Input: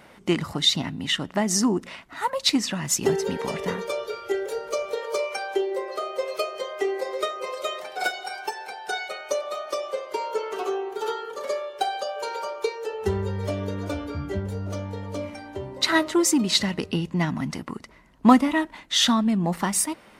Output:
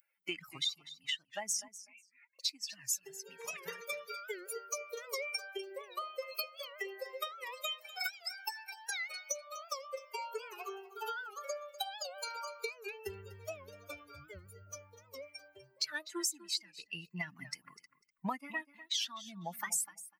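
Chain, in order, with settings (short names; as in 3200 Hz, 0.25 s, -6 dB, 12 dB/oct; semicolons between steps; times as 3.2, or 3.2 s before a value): per-bin expansion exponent 2; differentiator; compressor 6:1, threshold -53 dBFS, peak gain reduction 29 dB; 1.68–2.39 Butterworth band-pass 2300 Hz, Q 6.6; on a send: feedback echo 0.248 s, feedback 15%, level -16 dB; on the sum: record warp 78 rpm, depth 160 cents; gain +17 dB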